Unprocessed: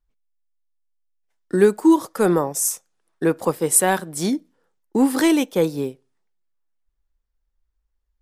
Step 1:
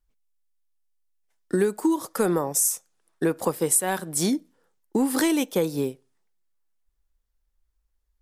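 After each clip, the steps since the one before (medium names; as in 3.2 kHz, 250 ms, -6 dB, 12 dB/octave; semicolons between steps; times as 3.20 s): peaking EQ 12 kHz +5.5 dB 1.7 oct; compression 6:1, threshold -19 dBFS, peak gain reduction 12.5 dB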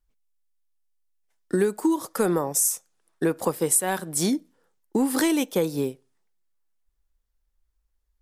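no audible change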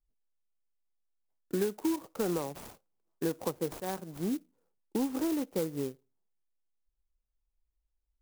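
median filter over 25 samples; sampling jitter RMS 0.076 ms; trim -8 dB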